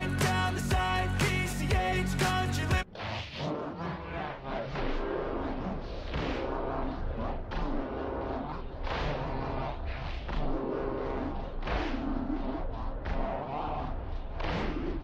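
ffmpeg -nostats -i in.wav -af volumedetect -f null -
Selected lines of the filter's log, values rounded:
mean_volume: -31.9 dB
max_volume: -16.8 dB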